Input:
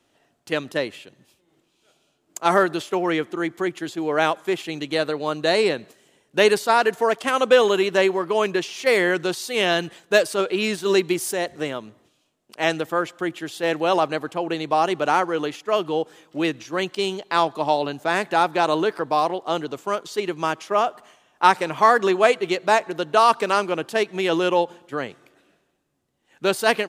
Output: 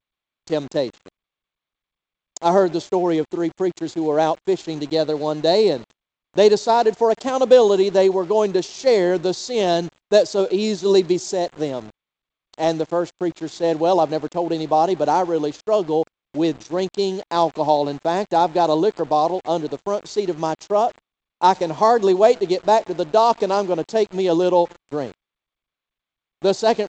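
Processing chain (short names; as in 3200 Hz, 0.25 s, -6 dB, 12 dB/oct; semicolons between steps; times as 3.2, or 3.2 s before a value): band shelf 1900 Hz -14 dB; sample gate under -41 dBFS; gain +4 dB; G.722 64 kbps 16000 Hz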